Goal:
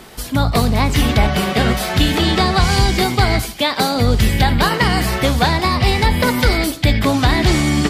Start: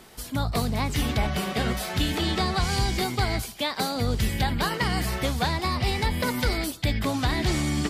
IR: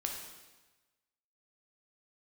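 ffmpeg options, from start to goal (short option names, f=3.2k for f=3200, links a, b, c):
-filter_complex "[0:a]asplit=2[a][b];[1:a]atrim=start_sample=2205,afade=t=out:st=0.23:d=0.01,atrim=end_sample=10584,lowpass=5.6k[c];[b][c]afir=irnorm=-1:irlink=0,volume=-10dB[d];[a][d]amix=inputs=2:normalize=0,volume=8.5dB"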